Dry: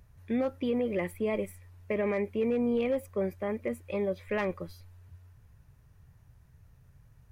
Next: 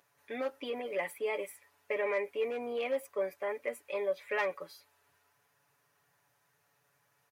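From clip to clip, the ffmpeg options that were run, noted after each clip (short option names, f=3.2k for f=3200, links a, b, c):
-af "highpass=590,aecho=1:1:7:0.67"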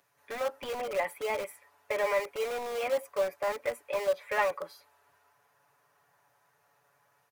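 -filter_complex "[0:a]acrossover=split=530|1300[a][b][c];[a]aeval=exprs='(mod(94.4*val(0)+1,2)-1)/94.4':c=same[d];[b]dynaudnorm=f=150:g=3:m=9.5dB[e];[d][e][c]amix=inputs=3:normalize=0"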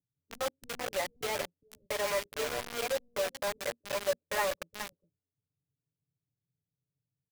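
-filter_complex "[0:a]aecho=1:1:416:0.376,acrossover=split=240[a][b];[b]acrusher=bits=4:mix=0:aa=0.000001[c];[a][c]amix=inputs=2:normalize=0,volume=-4dB"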